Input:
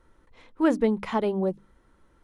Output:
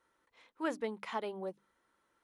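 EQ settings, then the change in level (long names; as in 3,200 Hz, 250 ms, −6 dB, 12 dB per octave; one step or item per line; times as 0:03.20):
high-pass filter 940 Hz 6 dB per octave
−6.0 dB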